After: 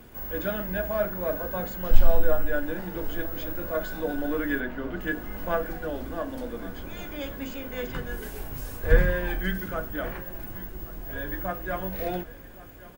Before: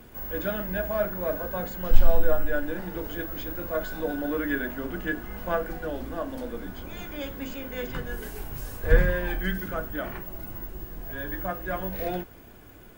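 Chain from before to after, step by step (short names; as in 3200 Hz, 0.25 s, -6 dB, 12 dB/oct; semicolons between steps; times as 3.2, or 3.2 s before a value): 4.6–5.01 LPF 4000 Hz 12 dB/oct; feedback echo 1.119 s, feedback 57%, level -19.5 dB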